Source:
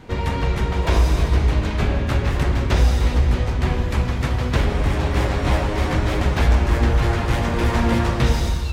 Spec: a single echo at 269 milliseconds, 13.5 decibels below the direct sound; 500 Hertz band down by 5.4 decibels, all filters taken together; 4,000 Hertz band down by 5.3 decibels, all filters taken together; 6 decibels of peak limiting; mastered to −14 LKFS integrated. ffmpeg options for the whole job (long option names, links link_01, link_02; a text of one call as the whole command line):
ffmpeg -i in.wav -af "equalizer=frequency=500:width_type=o:gain=-7,equalizer=frequency=4000:width_type=o:gain=-7,alimiter=limit=-12dB:level=0:latency=1,aecho=1:1:269:0.211,volume=8.5dB" out.wav